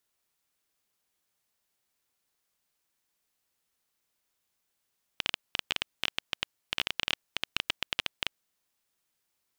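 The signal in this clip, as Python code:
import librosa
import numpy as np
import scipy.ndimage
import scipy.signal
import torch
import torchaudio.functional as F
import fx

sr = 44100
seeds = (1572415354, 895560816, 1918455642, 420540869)

y = fx.geiger_clicks(sr, seeds[0], length_s=3.23, per_s=13.0, level_db=-9.5)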